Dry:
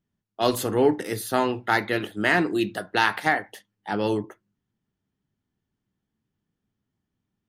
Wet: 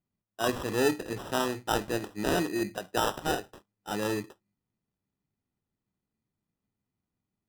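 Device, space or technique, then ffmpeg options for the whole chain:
crushed at another speed: -af "asetrate=22050,aresample=44100,acrusher=samples=40:mix=1:aa=0.000001,asetrate=88200,aresample=44100,volume=-6dB"

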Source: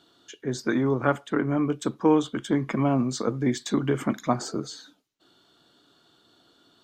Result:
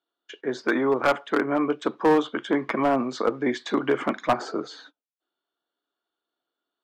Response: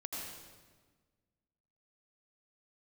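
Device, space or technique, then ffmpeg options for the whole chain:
walkie-talkie: -af "highpass=420,lowpass=2.7k,asoftclip=type=hard:threshold=-20.5dB,agate=range=-28dB:threshold=-54dB:ratio=16:detection=peak,volume=7dB"

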